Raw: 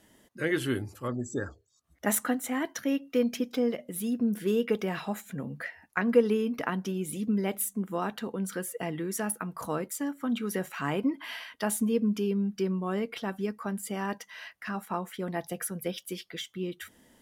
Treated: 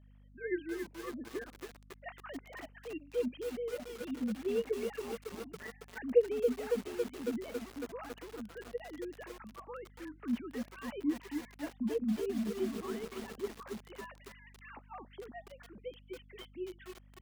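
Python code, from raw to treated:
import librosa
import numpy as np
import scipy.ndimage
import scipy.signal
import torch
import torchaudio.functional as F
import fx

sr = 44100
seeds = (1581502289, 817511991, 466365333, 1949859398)

y = fx.sine_speech(x, sr)
y = fx.add_hum(y, sr, base_hz=50, snr_db=19)
y = fx.echo_crushed(y, sr, ms=276, feedback_pct=80, bits=6, wet_db=-5)
y = y * librosa.db_to_amplitude(-9.0)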